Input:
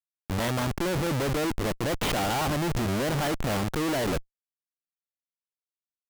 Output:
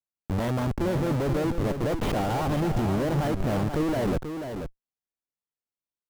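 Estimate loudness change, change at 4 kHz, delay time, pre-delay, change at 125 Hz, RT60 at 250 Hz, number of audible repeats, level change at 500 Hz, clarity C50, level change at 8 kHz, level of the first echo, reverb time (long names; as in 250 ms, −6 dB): +0.5 dB, −7.5 dB, 486 ms, no reverb audible, +3.0 dB, no reverb audible, 1, +1.5 dB, no reverb audible, −8.5 dB, −7.5 dB, no reverb audible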